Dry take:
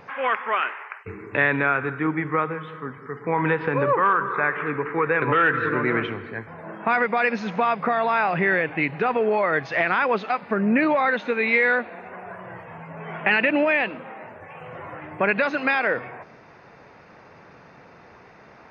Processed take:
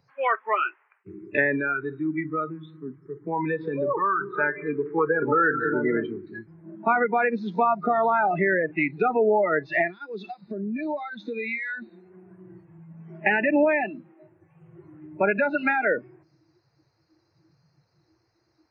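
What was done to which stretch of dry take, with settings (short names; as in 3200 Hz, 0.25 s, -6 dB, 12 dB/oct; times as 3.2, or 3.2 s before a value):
1.57–4.21 compressor 1.5:1, threshold -26 dBFS
5.07–6.27 LPF 2200 Hz
9.87–11.82 compressor, threshold -26 dBFS
whole clip: treble ducked by the level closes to 1600 Hz, closed at -17 dBFS; spectral noise reduction 28 dB; three-band isolator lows -21 dB, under 160 Hz, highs -15 dB, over 3700 Hz; gain +1.5 dB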